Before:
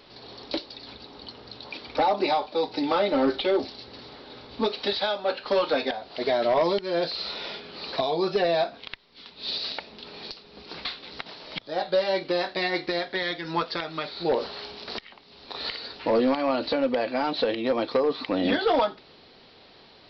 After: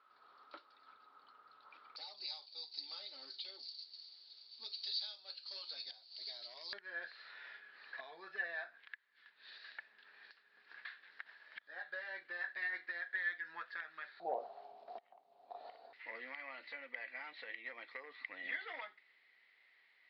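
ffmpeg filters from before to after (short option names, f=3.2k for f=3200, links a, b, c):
-af "asetnsamples=n=441:p=0,asendcmd='1.96 bandpass f 4600;6.73 bandpass f 1700;14.2 bandpass f 710;15.93 bandpass f 2000',bandpass=f=1.3k:t=q:w=12:csg=0"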